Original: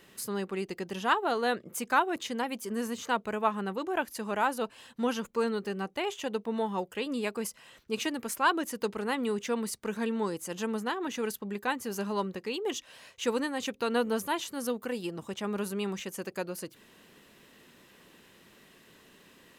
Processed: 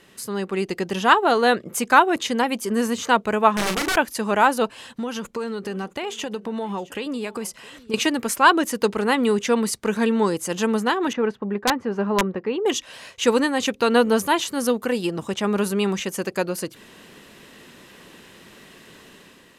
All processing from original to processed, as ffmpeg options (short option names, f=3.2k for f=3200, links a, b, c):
-filter_complex "[0:a]asettb=1/sr,asplit=3[a][b][c];[a]atrim=end=3.544[d];[b]atrim=start=3.54:end=3.96,asetpts=PTS-STARTPTS,afade=t=in:d=0.004:c=qsin,afade=t=out:st=0.416:d=0.004:c=qsin,aeval=exprs='(mod(26.6*val(0)+1,2)-1)/26.6':c=same,asplit=2[e][f];[f]adelay=38,volume=-6.5dB[g];[e][g]amix=inputs=2:normalize=0,atrim=end_sample=18522[h];[c]atrim=start=3.956[i];[d][h]acrossfade=d=0.004:c1=hsin:c2=qsin[j];[j][i]acrossfade=d=0.004:c1=qsin:c2=hsin,asettb=1/sr,asplit=3[k][l][m];[k]atrim=end=4.714[n];[l]atrim=start=4.71:end=7.94,asetpts=PTS-STARTPTS,afade=t=in:d=0.004:c=qsin,afade=t=out:st=3.226:d=0.004:c=qsin,acompressor=threshold=-36dB:ratio=5:attack=3.2:release=140:knee=1:detection=peak,aecho=1:1:666:0.0944,atrim=end_sample=142443[o];[m]atrim=start=7.936[p];[n][o]acrossfade=d=0.004:c1=hsin:c2=qsin[q];[q][p]acrossfade=d=0.004:c1=qsin:c2=hsin,asettb=1/sr,asplit=3[r][s][t];[r]atrim=end=11.134[u];[s]atrim=start=11.13:end=12.66,asetpts=PTS-STARTPTS,afade=t=in:d=0.004:c=qsin,afade=t=out:st=1.526:d=0.004:c=qsin,lowpass=1.6k,lowshelf=f=94:g=-5.5,aeval=exprs='(mod(11.2*val(0)+1,2)-1)/11.2':c=same[v];[t]atrim=start=12.656[w];[u][v]acrossfade=d=0.004:c1=hsin:c2=qsin[x];[x][w]acrossfade=d=0.004:c1=qsin:c2=hsin,lowpass=12k,dynaudnorm=f=110:g=9:m=6.5dB,volume=4.5dB"